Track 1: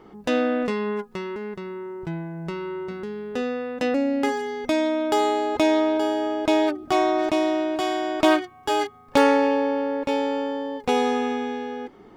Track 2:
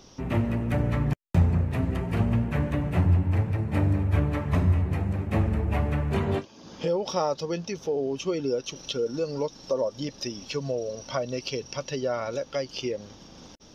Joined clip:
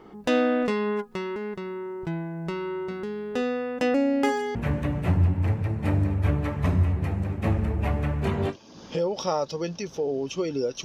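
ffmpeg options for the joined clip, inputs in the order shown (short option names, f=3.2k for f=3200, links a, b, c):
-filter_complex "[0:a]asettb=1/sr,asplit=3[a][b][c];[a]atrim=end=3.574[d];[b]atrim=start=3.57:end=4.55,asetpts=PTS-STARTPTS,afade=t=in:d=0.004:c=qsin,afade=t=out:st=0.976:d=0.004:c=qsin,bandreject=f=3.9k:w=7.8[e];[c]atrim=start=4.546[f];[d][e]acrossfade=d=0.004:c1=hsin:c2=qsin[g];[g][f]acrossfade=d=0.004:c1=qsin:c2=hsin,apad=whole_dur=10.84,atrim=end=10.84,atrim=end=4.552[h];[1:a]atrim=start=2.438:end=8.73[i];[h][i]acrossfade=d=0.004:c1=hsin:c2=hsin"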